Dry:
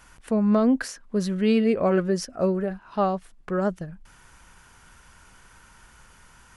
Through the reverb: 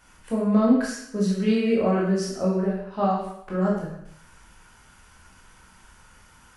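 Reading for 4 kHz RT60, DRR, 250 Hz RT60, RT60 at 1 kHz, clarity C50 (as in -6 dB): 0.70 s, -4.5 dB, 0.75 s, 0.75 s, 2.5 dB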